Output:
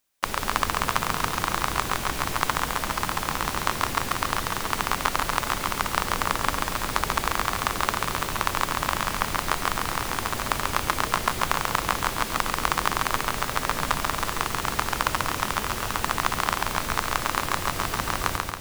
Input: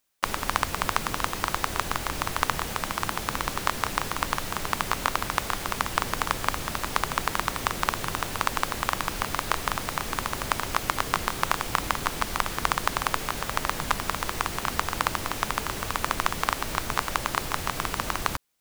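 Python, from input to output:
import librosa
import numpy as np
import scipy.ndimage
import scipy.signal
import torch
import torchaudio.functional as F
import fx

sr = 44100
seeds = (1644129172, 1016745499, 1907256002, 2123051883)

y = fx.echo_feedback(x, sr, ms=138, feedback_pct=59, wet_db=-3.5)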